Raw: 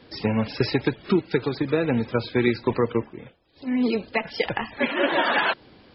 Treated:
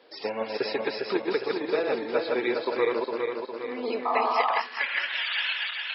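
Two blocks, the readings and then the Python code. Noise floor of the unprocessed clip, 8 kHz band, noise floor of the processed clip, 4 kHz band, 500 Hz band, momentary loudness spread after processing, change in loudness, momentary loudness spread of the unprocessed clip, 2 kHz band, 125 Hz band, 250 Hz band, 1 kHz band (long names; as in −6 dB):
−54 dBFS, can't be measured, −41 dBFS, +0.5 dB, −1.5 dB, 7 LU, −3.5 dB, 7 LU, −2.0 dB, below −20 dB, −10.0 dB, +0.5 dB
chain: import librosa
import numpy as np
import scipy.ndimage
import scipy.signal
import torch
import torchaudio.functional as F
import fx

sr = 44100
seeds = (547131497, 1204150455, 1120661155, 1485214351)

y = fx.reverse_delay_fb(x, sr, ms=204, feedback_pct=73, wet_db=-2.5)
y = fx.filter_sweep_highpass(y, sr, from_hz=510.0, to_hz=2600.0, start_s=4.17, end_s=5.24, q=1.6)
y = fx.spec_paint(y, sr, seeds[0], shape='noise', start_s=4.05, length_s=0.55, low_hz=630.0, high_hz=1300.0, level_db=-20.0)
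y = y * 10.0 ** (-5.5 / 20.0)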